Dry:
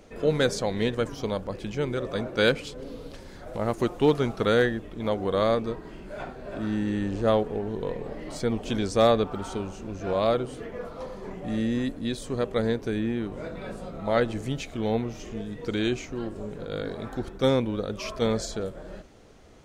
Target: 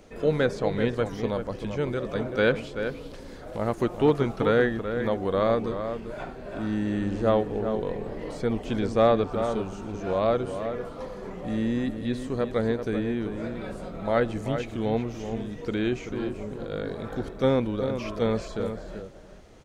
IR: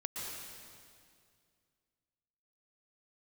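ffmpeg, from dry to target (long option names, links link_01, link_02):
-filter_complex "[0:a]acrossover=split=2900[link_01][link_02];[link_02]acompressor=threshold=-48dB:ratio=4:attack=1:release=60[link_03];[link_01][link_03]amix=inputs=2:normalize=0,asplit=2[link_04][link_05];[link_05]adelay=384.8,volume=-8dB,highshelf=frequency=4000:gain=-8.66[link_06];[link_04][link_06]amix=inputs=2:normalize=0"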